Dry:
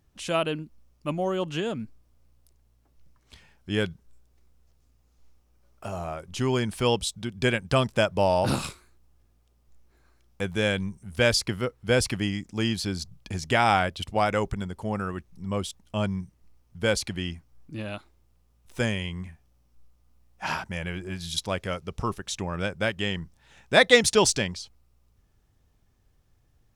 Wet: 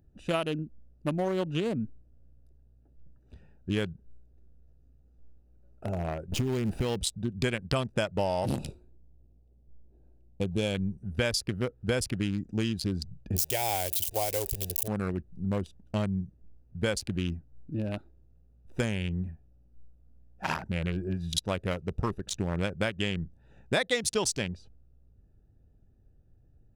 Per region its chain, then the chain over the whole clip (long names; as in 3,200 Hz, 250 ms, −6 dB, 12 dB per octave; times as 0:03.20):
0:06.32–0:06.96: converter with a step at zero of −28.5 dBFS + high-shelf EQ 8,500 Hz −4.5 dB + downward compressor 8 to 1, threshold −23 dBFS
0:08.14–0:10.75: flat-topped bell 1,500 Hz −11.5 dB 1.1 octaves + one half of a high-frequency compander decoder only
0:13.36–0:14.88: spike at every zero crossing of −17 dBFS + phaser with its sweep stopped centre 530 Hz, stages 4
whole clip: adaptive Wiener filter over 41 samples; high-shelf EQ 8,100 Hz +7 dB; downward compressor, threshold −30 dBFS; level +4.5 dB